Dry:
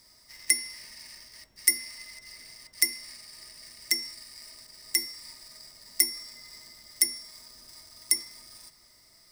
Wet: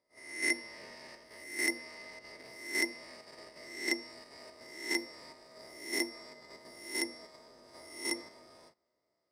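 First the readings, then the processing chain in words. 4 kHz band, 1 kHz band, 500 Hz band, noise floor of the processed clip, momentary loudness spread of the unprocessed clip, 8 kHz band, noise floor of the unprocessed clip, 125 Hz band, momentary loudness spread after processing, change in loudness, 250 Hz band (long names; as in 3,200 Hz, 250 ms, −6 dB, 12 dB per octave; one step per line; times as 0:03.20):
−9.0 dB, +7.0 dB, +12.0 dB, −82 dBFS, 21 LU, −13.0 dB, −59 dBFS, can't be measured, 19 LU, −8.0 dB, +9.0 dB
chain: peak hold with a rise ahead of every peak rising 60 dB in 0.67 s
noise gate −49 dBFS, range −19 dB
in parallel at 0 dB: output level in coarse steps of 23 dB
on the sum: resonant band-pass 500 Hz, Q 1.6
level +8.5 dB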